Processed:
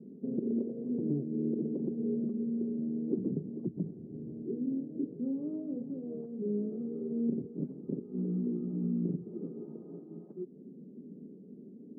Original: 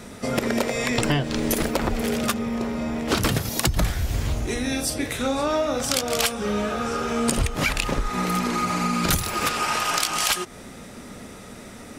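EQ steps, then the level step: elliptic band-pass 160–410 Hz, stop band 80 dB; air absorption 250 m; -5.0 dB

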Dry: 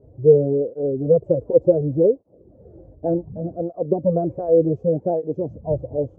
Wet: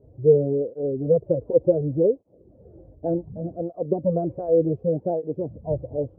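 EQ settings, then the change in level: air absorption 330 m; -2.5 dB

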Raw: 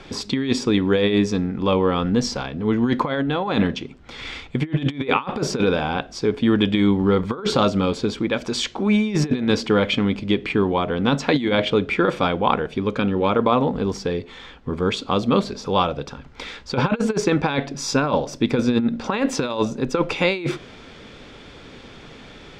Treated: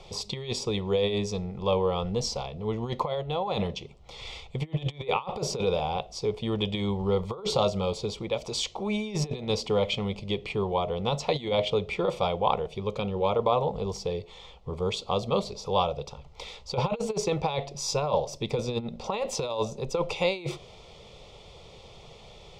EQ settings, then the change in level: fixed phaser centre 660 Hz, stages 4; -3.0 dB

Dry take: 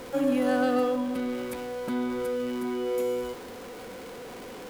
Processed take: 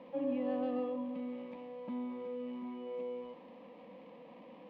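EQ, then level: speaker cabinet 160–2400 Hz, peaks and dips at 260 Hz -4 dB, 430 Hz -4 dB, 730 Hz -9 dB, 2100 Hz -4 dB; fixed phaser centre 390 Hz, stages 6; -5.0 dB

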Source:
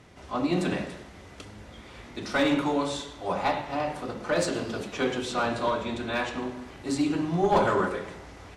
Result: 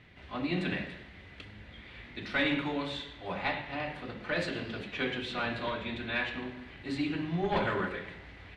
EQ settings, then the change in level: tone controls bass +6 dB, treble -11 dB; band shelf 2700 Hz +11.5 dB; -9.0 dB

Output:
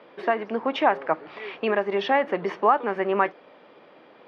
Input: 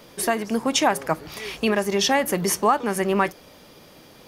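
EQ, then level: HPF 370 Hz 12 dB/oct; LPF 3200 Hz 12 dB/oct; air absorption 350 m; +2.0 dB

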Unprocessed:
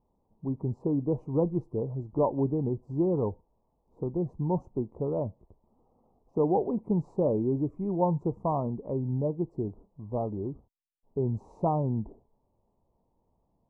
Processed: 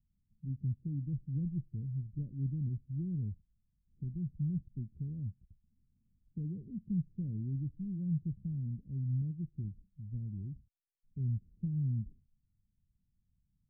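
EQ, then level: inverse Chebyshev low-pass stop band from 800 Hz, stop band 70 dB; -1.5 dB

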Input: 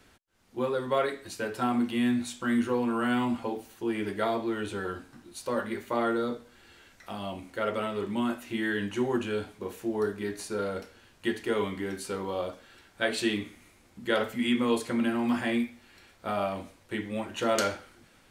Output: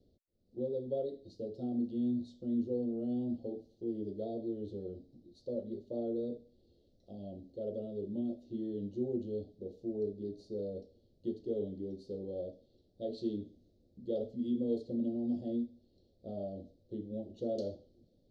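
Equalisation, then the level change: elliptic band-stop 570–4200 Hz, stop band 40 dB; air absorption 250 m; high shelf 7200 Hz -10.5 dB; -5.5 dB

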